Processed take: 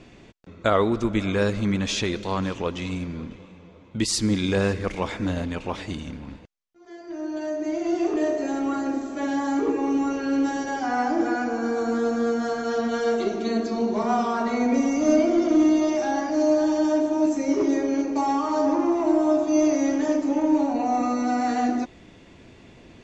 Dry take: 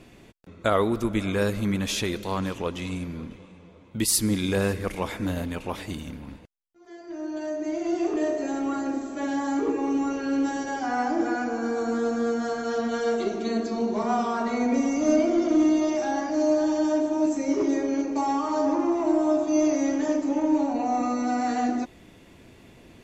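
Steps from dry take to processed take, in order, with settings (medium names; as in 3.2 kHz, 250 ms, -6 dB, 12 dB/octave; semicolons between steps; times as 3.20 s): low-pass 7.2 kHz 24 dB/octave; trim +2 dB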